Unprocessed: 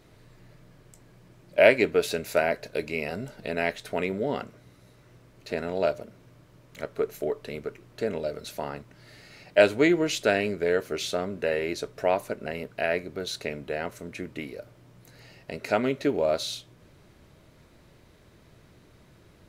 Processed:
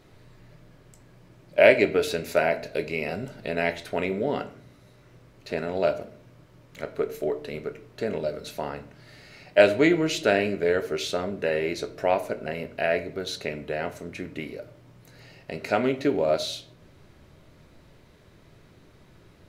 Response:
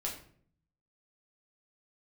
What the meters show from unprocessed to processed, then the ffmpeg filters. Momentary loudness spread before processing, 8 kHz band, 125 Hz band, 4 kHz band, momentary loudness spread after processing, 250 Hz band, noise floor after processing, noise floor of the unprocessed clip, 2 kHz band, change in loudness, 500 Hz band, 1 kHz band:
16 LU, −1.0 dB, +2.0 dB, +1.0 dB, 17 LU, +1.5 dB, −55 dBFS, −57 dBFS, +1.5 dB, +1.5 dB, +1.5 dB, +1.5 dB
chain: -filter_complex "[0:a]asplit=2[link_01][link_02];[1:a]atrim=start_sample=2205,lowpass=6900[link_03];[link_02][link_03]afir=irnorm=-1:irlink=0,volume=-6.5dB[link_04];[link_01][link_04]amix=inputs=2:normalize=0,volume=-1.5dB"

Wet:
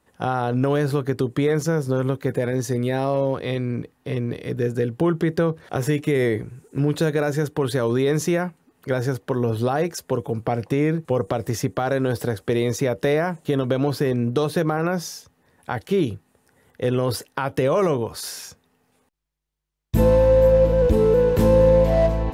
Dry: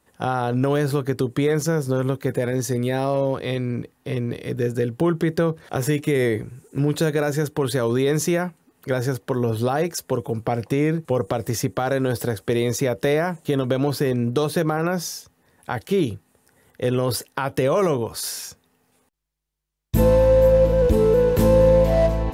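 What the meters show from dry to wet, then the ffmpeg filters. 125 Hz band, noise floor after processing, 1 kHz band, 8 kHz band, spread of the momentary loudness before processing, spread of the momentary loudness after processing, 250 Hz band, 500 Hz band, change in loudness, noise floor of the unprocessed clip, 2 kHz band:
0.0 dB, −66 dBFS, 0.0 dB, −4.0 dB, 11 LU, 11 LU, 0.0 dB, 0.0 dB, 0.0 dB, −65 dBFS, −0.5 dB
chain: -af "highshelf=frequency=5700:gain=-6"

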